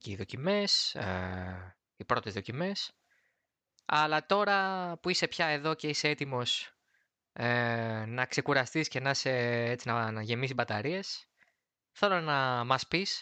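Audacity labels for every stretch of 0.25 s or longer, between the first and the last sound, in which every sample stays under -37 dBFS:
1.600000	2.000000	silence
2.870000	3.890000	silence
6.650000	7.360000	silence
11.170000	12.020000	silence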